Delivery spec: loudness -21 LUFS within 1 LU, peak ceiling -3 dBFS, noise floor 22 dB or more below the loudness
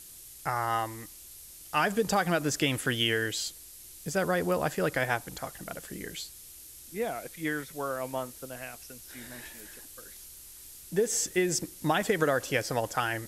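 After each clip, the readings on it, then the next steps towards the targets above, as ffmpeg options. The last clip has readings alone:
noise floor -49 dBFS; noise floor target -52 dBFS; loudness -30.0 LUFS; peak -12.5 dBFS; loudness target -21.0 LUFS
-> -af "afftdn=nr=6:nf=-49"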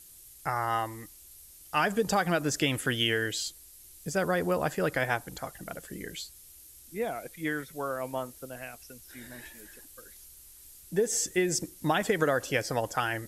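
noise floor -52 dBFS; loudness -30.0 LUFS; peak -12.5 dBFS; loudness target -21.0 LUFS
-> -af "volume=9dB"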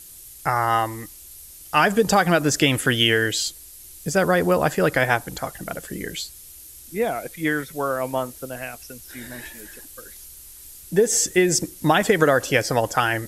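loudness -21.0 LUFS; peak -3.5 dBFS; noise floor -43 dBFS

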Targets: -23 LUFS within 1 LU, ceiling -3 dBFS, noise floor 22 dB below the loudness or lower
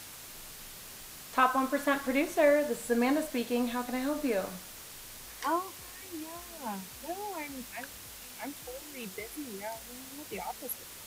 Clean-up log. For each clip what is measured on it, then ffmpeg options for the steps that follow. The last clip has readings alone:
noise floor -47 dBFS; noise floor target -55 dBFS; loudness -32.5 LUFS; peak -11.0 dBFS; loudness target -23.0 LUFS
-> -af "afftdn=nr=8:nf=-47"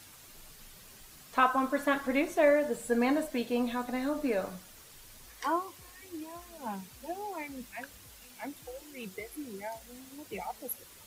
noise floor -54 dBFS; noise floor target -55 dBFS
-> -af "afftdn=nr=6:nf=-54"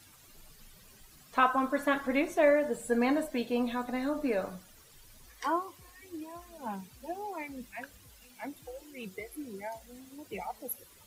noise floor -58 dBFS; loudness -32.0 LUFS; peak -11.0 dBFS; loudness target -23.0 LUFS
-> -af "volume=9dB,alimiter=limit=-3dB:level=0:latency=1"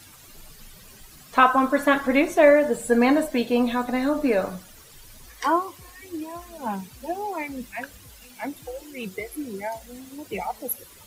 loudness -23.0 LUFS; peak -3.0 dBFS; noise floor -49 dBFS

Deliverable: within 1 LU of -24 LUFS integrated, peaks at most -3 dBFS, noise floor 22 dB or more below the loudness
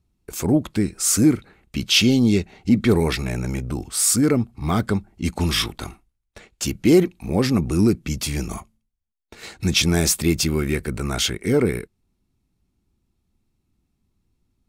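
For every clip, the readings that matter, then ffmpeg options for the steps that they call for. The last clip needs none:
loudness -20.5 LUFS; peak -5.5 dBFS; loudness target -24.0 LUFS
-> -af "volume=-3.5dB"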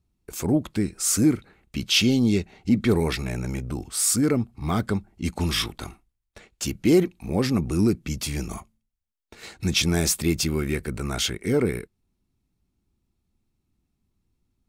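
loudness -24.0 LUFS; peak -9.0 dBFS; noise floor -78 dBFS

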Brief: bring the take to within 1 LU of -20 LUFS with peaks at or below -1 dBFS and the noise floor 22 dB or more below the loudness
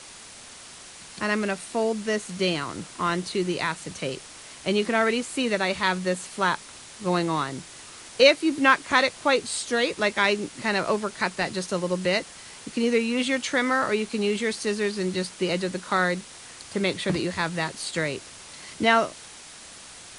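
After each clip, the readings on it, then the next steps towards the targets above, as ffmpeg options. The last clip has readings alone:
noise floor -45 dBFS; noise floor target -47 dBFS; loudness -25.0 LUFS; peak -3.0 dBFS; loudness target -20.0 LUFS
-> -af "afftdn=nr=6:nf=-45"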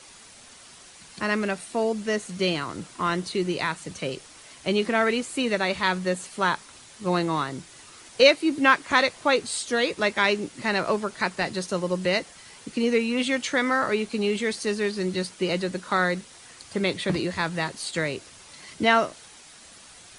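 noise floor -49 dBFS; loudness -25.0 LUFS; peak -3.0 dBFS; loudness target -20.0 LUFS
-> -af "volume=5dB,alimiter=limit=-1dB:level=0:latency=1"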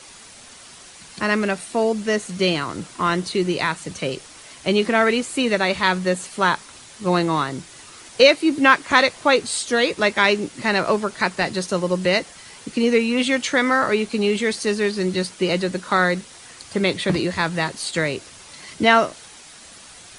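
loudness -20.5 LUFS; peak -1.0 dBFS; noise floor -44 dBFS

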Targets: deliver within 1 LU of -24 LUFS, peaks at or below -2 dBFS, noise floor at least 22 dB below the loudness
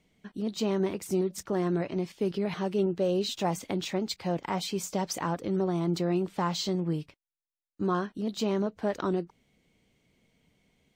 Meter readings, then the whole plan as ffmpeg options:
loudness -30.5 LUFS; peak -16.5 dBFS; loudness target -24.0 LUFS
-> -af "volume=6.5dB"

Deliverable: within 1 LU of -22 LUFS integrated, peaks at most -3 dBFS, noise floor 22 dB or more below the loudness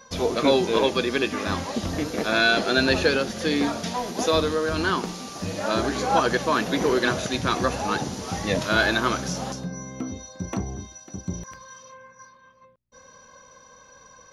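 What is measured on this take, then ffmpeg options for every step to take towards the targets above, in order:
loudness -24.0 LUFS; peak -8.5 dBFS; loudness target -22.0 LUFS
-> -af "volume=2dB"

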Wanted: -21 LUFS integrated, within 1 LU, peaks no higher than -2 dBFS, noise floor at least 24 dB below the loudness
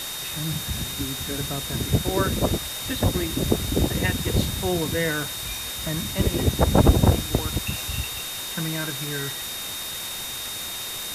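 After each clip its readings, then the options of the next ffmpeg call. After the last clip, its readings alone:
steady tone 3700 Hz; tone level -34 dBFS; noise floor -32 dBFS; noise floor target -49 dBFS; loudness -25.0 LUFS; peak -4.5 dBFS; loudness target -21.0 LUFS
-> -af "bandreject=f=3.7k:w=30"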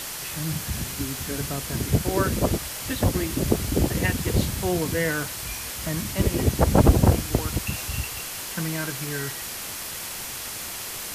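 steady tone none; noise floor -34 dBFS; noise floor target -50 dBFS
-> -af "afftdn=nr=16:nf=-34"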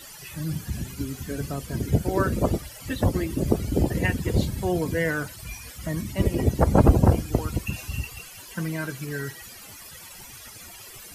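noise floor -44 dBFS; noise floor target -50 dBFS
-> -af "afftdn=nr=6:nf=-44"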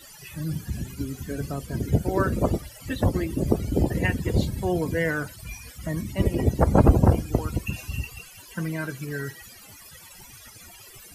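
noise floor -47 dBFS; noise floor target -50 dBFS
-> -af "afftdn=nr=6:nf=-47"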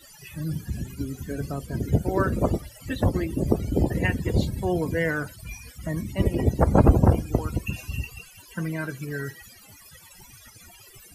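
noise floor -50 dBFS; loudness -26.0 LUFS; peak -5.0 dBFS; loudness target -21.0 LUFS
-> -af "volume=5dB,alimiter=limit=-2dB:level=0:latency=1"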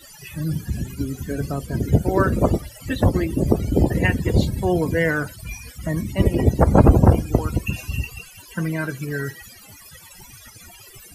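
loudness -21.0 LUFS; peak -2.0 dBFS; noise floor -45 dBFS

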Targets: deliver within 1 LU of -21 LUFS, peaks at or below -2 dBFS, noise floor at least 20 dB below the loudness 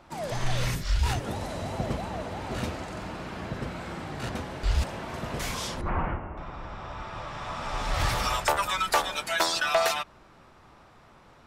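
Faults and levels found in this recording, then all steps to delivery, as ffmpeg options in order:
loudness -30.0 LUFS; peak -13.0 dBFS; loudness target -21.0 LUFS
-> -af "volume=9dB"

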